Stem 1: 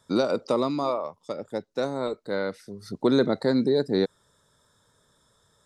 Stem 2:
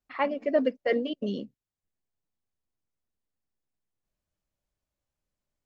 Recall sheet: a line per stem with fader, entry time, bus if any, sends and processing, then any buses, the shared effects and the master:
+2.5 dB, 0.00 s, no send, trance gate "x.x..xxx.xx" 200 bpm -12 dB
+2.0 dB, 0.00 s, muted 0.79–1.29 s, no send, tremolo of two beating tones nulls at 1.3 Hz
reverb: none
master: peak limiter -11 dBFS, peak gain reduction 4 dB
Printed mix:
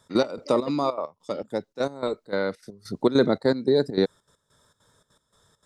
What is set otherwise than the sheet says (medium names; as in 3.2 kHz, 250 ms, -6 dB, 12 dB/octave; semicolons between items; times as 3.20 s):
stem 2 +2.0 dB -> -8.5 dB; master: missing peak limiter -11 dBFS, peak gain reduction 4 dB